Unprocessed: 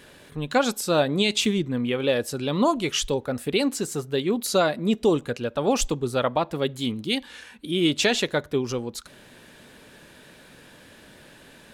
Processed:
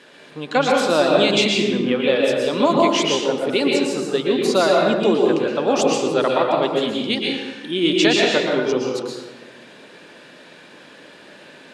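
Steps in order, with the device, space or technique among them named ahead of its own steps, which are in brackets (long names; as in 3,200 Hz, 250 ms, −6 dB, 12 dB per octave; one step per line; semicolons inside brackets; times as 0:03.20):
supermarket ceiling speaker (band-pass filter 250–6,000 Hz; convolution reverb RT60 1.1 s, pre-delay 111 ms, DRR −2 dB)
level +3 dB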